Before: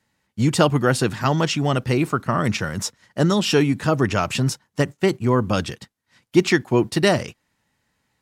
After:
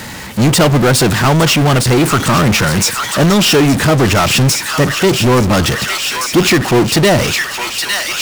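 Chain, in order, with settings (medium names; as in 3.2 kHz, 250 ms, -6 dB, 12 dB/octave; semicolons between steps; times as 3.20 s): feedback echo behind a high-pass 860 ms, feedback 57%, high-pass 1.9 kHz, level -10 dB; power-law waveshaper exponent 0.35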